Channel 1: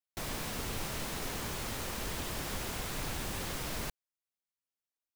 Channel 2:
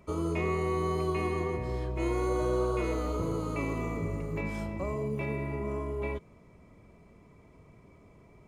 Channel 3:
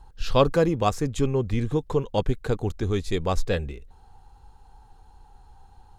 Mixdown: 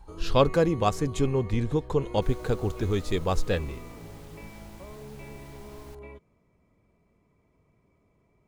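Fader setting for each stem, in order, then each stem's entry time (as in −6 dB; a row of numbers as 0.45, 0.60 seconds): −16.0, −11.0, −1.5 decibels; 2.05, 0.00, 0.00 seconds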